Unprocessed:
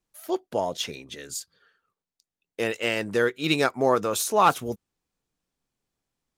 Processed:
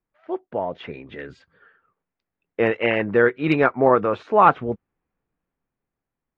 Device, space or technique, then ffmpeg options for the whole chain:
action camera in a waterproof case: -af "lowpass=f=2.2k:w=0.5412,lowpass=f=2.2k:w=1.3066,dynaudnorm=f=200:g=11:m=13.5dB,volume=-1dB" -ar 44100 -c:a aac -b:a 48k

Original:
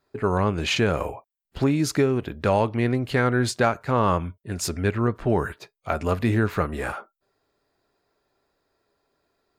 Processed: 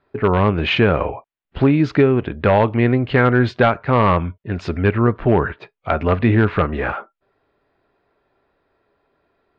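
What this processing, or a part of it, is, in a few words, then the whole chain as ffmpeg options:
synthesiser wavefolder: -af "aeval=exprs='0.251*(abs(mod(val(0)/0.251+3,4)-2)-1)':c=same,lowpass=f=3.2k:w=0.5412,lowpass=f=3.2k:w=1.3066,volume=7dB"

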